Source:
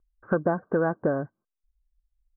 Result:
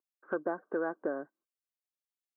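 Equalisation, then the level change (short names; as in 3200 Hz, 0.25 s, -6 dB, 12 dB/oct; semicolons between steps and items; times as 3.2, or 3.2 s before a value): ladder high-pass 260 Hz, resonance 40%; tilt shelf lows -5 dB, about 1200 Hz; 0.0 dB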